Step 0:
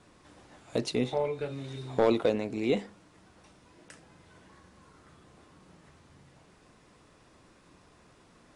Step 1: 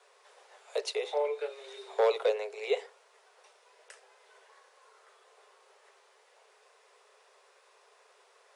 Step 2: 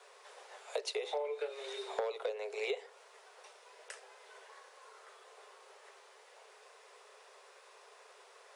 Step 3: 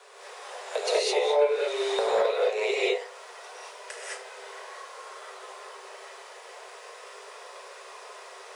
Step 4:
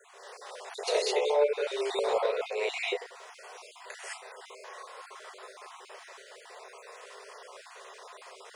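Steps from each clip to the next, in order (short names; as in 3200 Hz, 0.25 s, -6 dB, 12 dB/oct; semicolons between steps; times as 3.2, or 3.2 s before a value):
Chebyshev high-pass 390 Hz, order 10
compressor 16:1, threshold -37 dBFS, peak gain reduction 16.5 dB; gain +4 dB
non-linear reverb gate 0.24 s rising, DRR -7 dB; gain +6 dB
random spectral dropouts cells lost 28%; gain -2.5 dB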